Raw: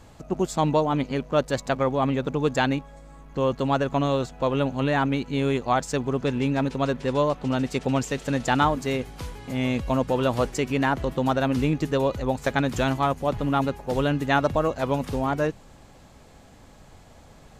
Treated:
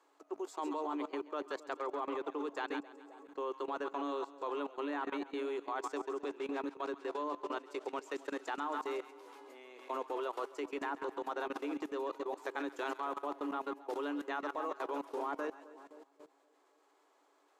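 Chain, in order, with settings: rippled Chebyshev high-pass 280 Hz, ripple 9 dB; two-band feedback delay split 830 Hz, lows 262 ms, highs 134 ms, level -10 dB; level held to a coarse grid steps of 17 dB; trim -3 dB

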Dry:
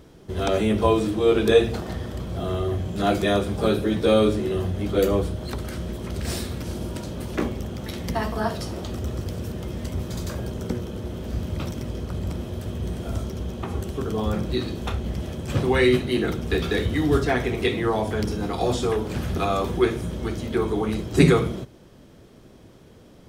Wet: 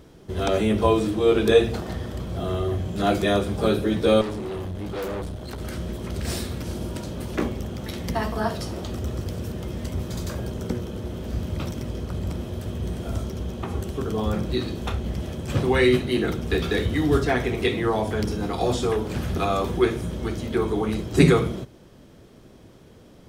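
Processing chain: 4.21–5.61 s: valve stage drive 27 dB, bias 0.6

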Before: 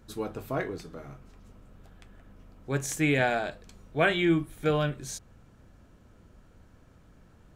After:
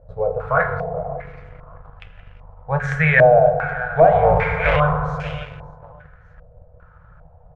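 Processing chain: 4.12–4.76 s: cycle switcher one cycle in 3, inverted; Chebyshev band-stop 170–470 Hz, order 4; vibrato 3.7 Hz 28 cents; feedback delay 581 ms, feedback 28%, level -18 dB; FDN reverb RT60 2.2 s, low-frequency decay 1.2×, high-frequency decay 0.4×, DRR 6 dB; waveshaping leveller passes 1; in parallel at -8.5 dB: integer overflow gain 13 dB; on the sum: bass shelf 110 Hz +6 dB; loudness maximiser +11.5 dB; step-sequenced low-pass 2.5 Hz 590–2700 Hz; trim -8 dB

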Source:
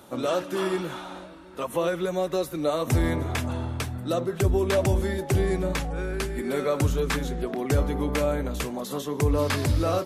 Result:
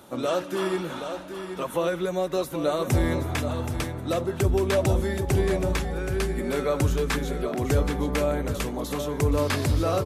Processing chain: delay 775 ms -8.5 dB

